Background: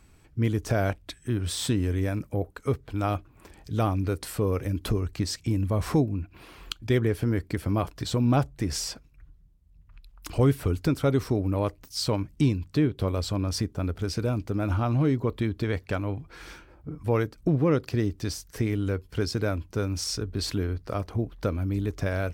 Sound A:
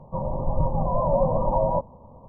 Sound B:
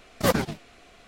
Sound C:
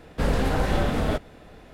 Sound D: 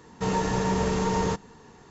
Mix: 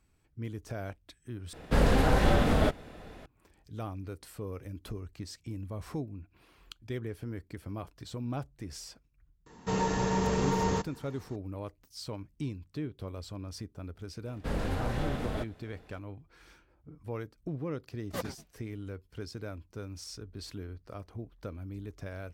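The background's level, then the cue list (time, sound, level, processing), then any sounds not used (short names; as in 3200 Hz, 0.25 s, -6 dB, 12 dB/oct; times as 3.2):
background -13.5 dB
1.53 replace with C -0.5 dB
9.46 add D -3.5 dB
14.26 add C -10 dB
17.9 add B -14 dB + upward expander, over -42 dBFS
not used: A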